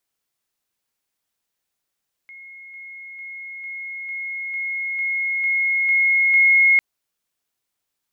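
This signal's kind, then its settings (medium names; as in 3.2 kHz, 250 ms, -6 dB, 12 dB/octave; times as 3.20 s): level ladder 2.16 kHz -38 dBFS, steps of 3 dB, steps 10, 0.45 s 0.00 s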